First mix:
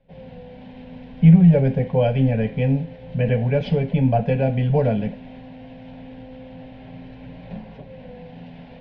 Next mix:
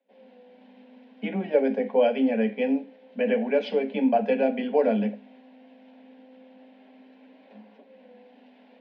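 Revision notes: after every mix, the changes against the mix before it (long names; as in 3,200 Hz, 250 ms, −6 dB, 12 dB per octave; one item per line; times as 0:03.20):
background −10.0 dB
master: add Chebyshev high-pass filter 200 Hz, order 10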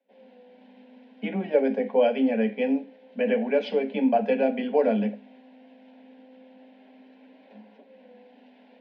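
background: add Butterworth band-reject 1,200 Hz, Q 5.2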